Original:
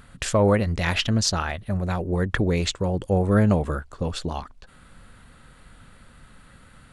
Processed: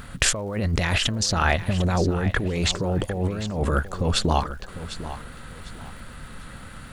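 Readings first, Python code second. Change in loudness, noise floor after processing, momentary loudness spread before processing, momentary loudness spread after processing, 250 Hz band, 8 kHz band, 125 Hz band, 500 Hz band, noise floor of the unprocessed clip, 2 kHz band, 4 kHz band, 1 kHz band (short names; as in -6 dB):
-0.5 dB, -41 dBFS, 11 LU, 19 LU, -2.5 dB, +4.5 dB, -0.5 dB, -3.0 dB, -52 dBFS, +3.0 dB, +3.5 dB, +2.5 dB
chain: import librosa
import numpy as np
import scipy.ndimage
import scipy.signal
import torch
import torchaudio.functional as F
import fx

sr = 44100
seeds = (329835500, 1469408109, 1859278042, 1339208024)

y = fx.over_compress(x, sr, threshold_db=-28.0, ratio=-1.0)
y = fx.dmg_crackle(y, sr, seeds[0], per_s=300.0, level_db=-50.0)
y = fx.echo_feedback(y, sr, ms=750, feedback_pct=29, wet_db=-13)
y = y * librosa.db_to_amplitude(4.5)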